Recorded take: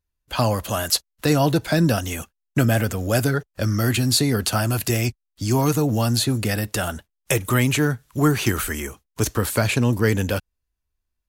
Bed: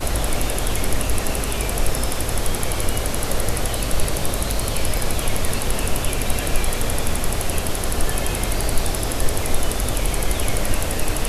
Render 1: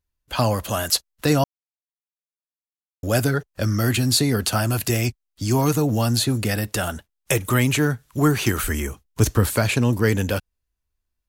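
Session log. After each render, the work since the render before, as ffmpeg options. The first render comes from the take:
-filter_complex "[0:a]asettb=1/sr,asplit=3[a][b][c];[a]atrim=end=8.634[d];[b]atrim=start=8.63:end=9.56,asetpts=PTS-STARTPTS,afade=t=in:d=0.004:c=qsin,afade=t=out:st=0.926:d=0.004:c=qsin,lowshelf=f=200:g=8[e];[c]atrim=start=9.556[f];[d][e]acrossfade=d=0.004:c1=hsin:c2=qsin[g];[g][f]acrossfade=d=0.004:c1=qsin:c2=hsin,asplit=3[h][i][j];[h]atrim=end=1.44,asetpts=PTS-STARTPTS,afade=t=out:st=1.436:d=0.004:c=hsin[k];[i]atrim=start=1.44:end=3.03,asetpts=PTS-STARTPTS,volume=0[l];[j]atrim=start=3.03,asetpts=PTS-STARTPTS,afade=t=in:d=0.004:c=hsin[m];[k][l][m]concat=n=3:v=0:a=1"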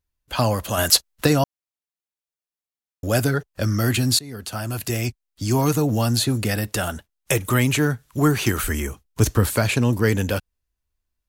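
-filter_complex "[0:a]asplit=3[a][b][c];[a]afade=t=out:st=0.77:d=0.02[d];[b]acontrast=34,afade=t=in:st=0.77:d=0.02,afade=t=out:st=1.26:d=0.02[e];[c]afade=t=in:st=1.26:d=0.02[f];[d][e][f]amix=inputs=3:normalize=0,asplit=2[g][h];[g]atrim=end=4.19,asetpts=PTS-STARTPTS,afade=t=out:st=4.186:d=0.004:c=hsin:silence=0.0794328[i];[h]atrim=start=4.19,asetpts=PTS-STARTPTS,afade=t=in:d=1.6:c=qsin:silence=0.0794328[j];[i][j]concat=n=2:v=0:a=1"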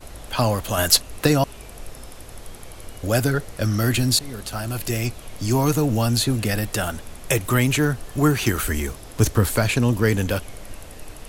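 -filter_complex "[1:a]volume=-17dB[a];[0:a][a]amix=inputs=2:normalize=0"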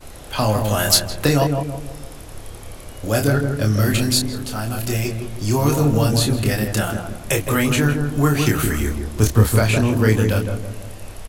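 -filter_complex "[0:a]asplit=2[a][b];[b]adelay=28,volume=-4.5dB[c];[a][c]amix=inputs=2:normalize=0,asplit=2[d][e];[e]adelay=162,lowpass=f=880:p=1,volume=-3.5dB,asplit=2[f][g];[g]adelay=162,lowpass=f=880:p=1,volume=0.49,asplit=2[h][i];[i]adelay=162,lowpass=f=880:p=1,volume=0.49,asplit=2[j][k];[k]adelay=162,lowpass=f=880:p=1,volume=0.49,asplit=2[l][m];[m]adelay=162,lowpass=f=880:p=1,volume=0.49,asplit=2[n][o];[o]adelay=162,lowpass=f=880:p=1,volume=0.49[p];[d][f][h][j][l][n][p]amix=inputs=7:normalize=0"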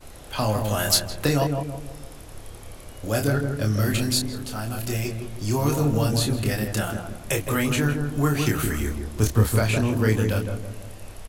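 -af "volume=-5dB"

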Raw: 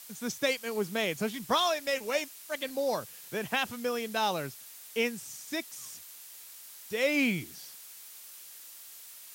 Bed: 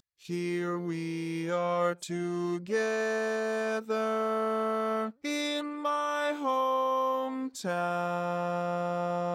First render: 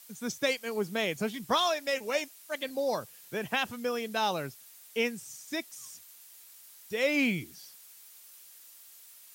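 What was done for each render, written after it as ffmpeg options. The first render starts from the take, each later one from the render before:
-af "afftdn=nr=6:nf=-49"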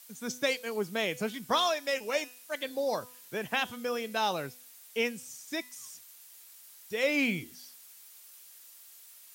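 -af "lowshelf=f=170:g=-5,bandreject=f=249.4:t=h:w=4,bandreject=f=498.8:t=h:w=4,bandreject=f=748.2:t=h:w=4,bandreject=f=997.6:t=h:w=4,bandreject=f=1.247k:t=h:w=4,bandreject=f=1.4964k:t=h:w=4,bandreject=f=1.7458k:t=h:w=4,bandreject=f=1.9952k:t=h:w=4,bandreject=f=2.2446k:t=h:w=4,bandreject=f=2.494k:t=h:w=4,bandreject=f=2.7434k:t=h:w=4,bandreject=f=2.9928k:t=h:w=4,bandreject=f=3.2422k:t=h:w=4,bandreject=f=3.4916k:t=h:w=4,bandreject=f=3.741k:t=h:w=4,bandreject=f=3.9904k:t=h:w=4,bandreject=f=4.2398k:t=h:w=4,bandreject=f=4.4892k:t=h:w=4,bandreject=f=4.7386k:t=h:w=4,bandreject=f=4.988k:t=h:w=4,bandreject=f=5.2374k:t=h:w=4,bandreject=f=5.4868k:t=h:w=4,bandreject=f=5.7362k:t=h:w=4,bandreject=f=5.9856k:t=h:w=4,bandreject=f=6.235k:t=h:w=4,bandreject=f=6.4844k:t=h:w=4,bandreject=f=6.7338k:t=h:w=4,bandreject=f=6.9832k:t=h:w=4,bandreject=f=7.2326k:t=h:w=4,bandreject=f=7.482k:t=h:w=4,bandreject=f=7.7314k:t=h:w=4,bandreject=f=7.9808k:t=h:w=4,bandreject=f=8.2302k:t=h:w=4,bandreject=f=8.4796k:t=h:w=4,bandreject=f=8.729k:t=h:w=4"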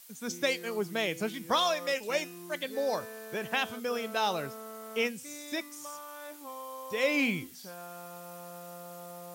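-filter_complex "[1:a]volume=-15dB[a];[0:a][a]amix=inputs=2:normalize=0"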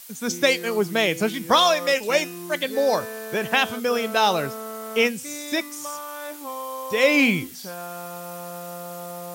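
-af "volume=10dB"

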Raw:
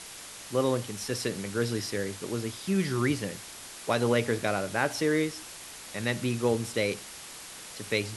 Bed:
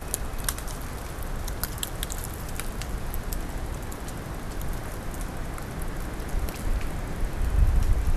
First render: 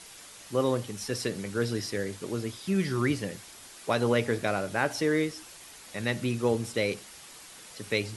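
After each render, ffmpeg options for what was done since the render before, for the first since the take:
-af "afftdn=nr=6:nf=-45"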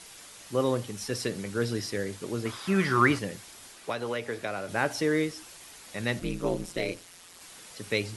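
-filter_complex "[0:a]asettb=1/sr,asplit=3[a][b][c];[a]atrim=end=2.454[d];[b]atrim=start=2.45:end=3.19,asetpts=PTS-STARTPTS,afade=t=in:d=0.004:c=qsin,afade=t=out:st=0.736:d=0.004:c=qsin,equalizer=f=1.2k:t=o:w=1.7:g=14[e];[c]atrim=start=3.186[f];[d][e]acrossfade=d=0.004:c1=hsin:c2=qsin[g];[g][f]acrossfade=d=0.004:c1=qsin:c2=hsin,asettb=1/sr,asplit=3[h][i][j];[h]atrim=end=3.724[k];[i]atrim=start=3.72:end=4.69,asetpts=PTS-STARTPTS,afade=t=in:d=0.004:c=qsin,afade=t=out:st=0.966:d=0.004:c=qsin,acrossover=split=350|1400|4100[l][m][n][o];[l]acompressor=threshold=-45dB:ratio=3[p];[m]acompressor=threshold=-33dB:ratio=3[q];[n]acompressor=threshold=-38dB:ratio=3[r];[o]acompressor=threshold=-53dB:ratio=3[s];[p][q][r][s]amix=inputs=4:normalize=0[t];[j]atrim=start=4.686[u];[k][t]acrossfade=d=0.004:c1=hsin:c2=qsin[v];[v][u]acrossfade=d=0.004:c1=qsin:c2=hsin,asettb=1/sr,asplit=3[w][x][y];[w]atrim=end=6.194[z];[x]atrim=start=6.19:end=7.41,asetpts=PTS-STARTPTS,afade=t=in:d=0.004:c=qsin,afade=t=out:st=1.216:d=0.004:c=qsin,aeval=exprs='val(0)*sin(2*PI*87*n/s)':c=same[aa];[y]atrim=start=7.406[ab];[z][aa]acrossfade=d=0.004:c1=hsin:c2=qsin[ac];[ac][ab]acrossfade=d=0.004:c1=qsin:c2=hsin"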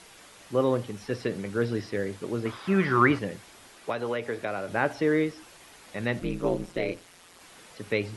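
-filter_complex "[0:a]acrossover=split=3400[a][b];[b]acompressor=threshold=-53dB:ratio=4:attack=1:release=60[c];[a][c]amix=inputs=2:normalize=0,equalizer=f=470:w=0.42:g=2.5"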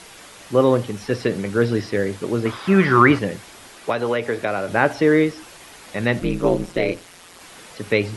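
-af "volume=8.5dB,alimiter=limit=-1dB:level=0:latency=1"

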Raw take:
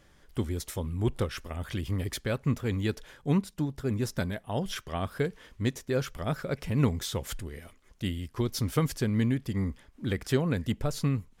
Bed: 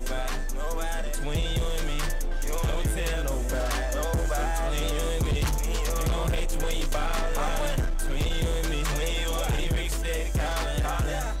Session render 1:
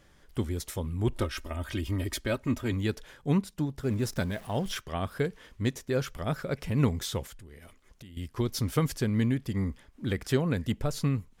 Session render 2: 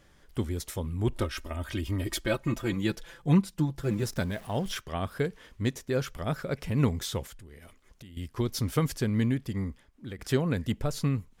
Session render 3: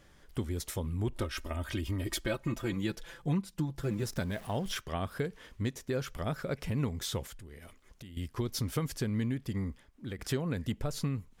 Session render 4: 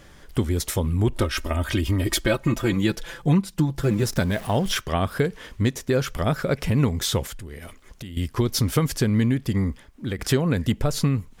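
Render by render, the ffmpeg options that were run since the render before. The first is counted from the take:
-filter_complex "[0:a]asettb=1/sr,asplit=3[a][b][c];[a]atrim=end=1.124[d];[b]atrim=start=1.12:end=2.73,asetpts=PTS-STARTPTS,afade=t=in:d=0.004:c=qsin,afade=t=out:st=1.606:d=0.004:c=qsin,aecho=1:1:3.2:0.65,atrim=end_sample=71001[e];[c]atrim=start=2.726[f];[d][e]acrossfade=d=0.004:c1=hsin:c2=qsin[g];[g][f]acrossfade=d=0.004:c1=qsin:c2=hsin,asettb=1/sr,asplit=3[h][i][j];[h]atrim=end=3.834[k];[i]atrim=start=3.83:end=4.78,asetpts=PTS-STARTPTS,afade=t=in:d=0.004:c=qsin,afade=t=out:st=0.946:d=0.004:c=qsin,aeval=exprs='val(0)+0.5*0.00631*sgn(val(0))':c=same[l];[j]atrim=start=4.776[m];[k][l]acrossfade=d=0.004:c1=hsin:c2=qsin[n];[n][m]acrossfade=d=0.004:c1=qsin:c2=hsin,asettb=1/sr,asplit=3[o][p][q];[o]atrim=end=7.264[r];[p]atrim=start=7.26:end=8.17,asetpts=PTS-STARTPTS,afade=t=in:d=0.004:c=qsin,afade=t=out:st=0.906:d=0.004:c=qsin,acompressor=threshold=-44dB:ratio=16:attack=3.2:release=140:knee=1:detection=peak[s];[q]atrim=start=8.166[t];[r][s]acrossfade=d=0.004:c1=hsin:c2=qsin[u];[u][t]acrossfade=d=0.004:c1=qsin:c2=hsin"
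-filter_complex "[0:a]asettb=1/sr,asplit=3[a][b][c];[a]atrim=end=2.064[d];[b]atrim=start=2.06:end=4.03,asetpts=PTS-STARTPTS,afade=t=in:d=0.004:c=qsin,afade=t=out:st=1.966:d=0.004:c=qsin,aecho=1:1:5.9:0.75,atrim=end_sample=86877[e];[c]atrim=start=4.026[f];[d][e]acrossfade=d=0.004:c1=hsin:c2=qsin[g];[g][f]acrossfade=d=0.004:c1=qsin:c2=hsin,asplit=2[h][i];[h]atrim=end=10.19,asetpts=PTS-STARTPTS,afade=t=out:st=9.35:d=0.84:silence=0.251189[j];[i]atrim=start=10.19,asetpts=PTS-STARTPTS,afade=t=in:d=0.004:c=hsin:silence=0.251189[k];[j][k]concat=n=2:v=0:a=1"
-af "acompressor=threshold=-31dB:ratio=2.5"
-af "volume=11.5dB"

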